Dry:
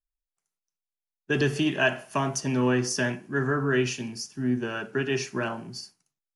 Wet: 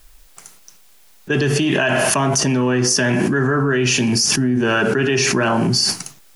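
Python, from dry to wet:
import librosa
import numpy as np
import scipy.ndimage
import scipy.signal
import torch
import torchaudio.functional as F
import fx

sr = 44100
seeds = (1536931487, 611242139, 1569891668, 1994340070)

y = fx.env_flatten(x, sr, amount_pct=100)
y = y * librosa.db_to_amplitude(2.5)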